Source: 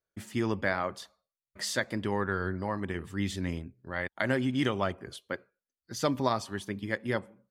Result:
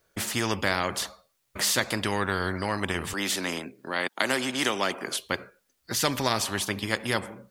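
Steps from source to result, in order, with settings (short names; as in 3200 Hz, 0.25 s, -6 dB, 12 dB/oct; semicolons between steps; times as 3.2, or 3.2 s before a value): 3.13–5.2 HPF 240 Hz 24 dB/oct; spectral compressor 2:1; gain +7.5 dB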